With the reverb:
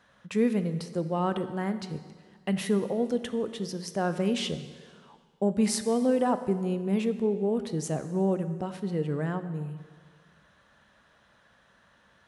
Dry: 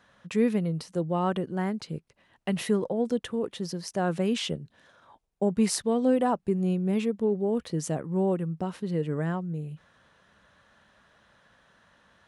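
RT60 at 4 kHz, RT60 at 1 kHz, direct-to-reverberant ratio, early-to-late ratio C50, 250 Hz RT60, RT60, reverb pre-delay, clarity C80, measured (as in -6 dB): 1.6 s, 1.7 s, 10.0 dB, 11.5 dB, 1.8 s, 1.7 s, 6 ms, 12.5 dB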